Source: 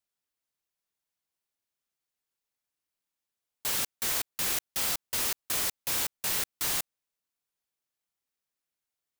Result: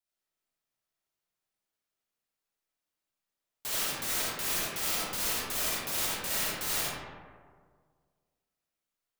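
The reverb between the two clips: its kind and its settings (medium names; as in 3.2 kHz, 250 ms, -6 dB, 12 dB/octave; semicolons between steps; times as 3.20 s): algorithmic reverb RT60 1.8 s, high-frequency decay 0.4×, pre-delay 25 ms, DRR -7 dB; trim -6 dB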